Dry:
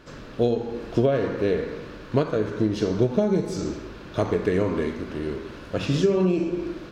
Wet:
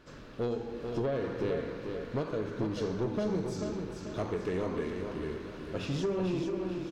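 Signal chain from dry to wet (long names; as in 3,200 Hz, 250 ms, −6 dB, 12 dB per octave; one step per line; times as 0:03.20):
soft clipping −17.5 dBFS, distortion −13 dB
repeating echo 441 ms, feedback 42%, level −6 dB
level −8 dB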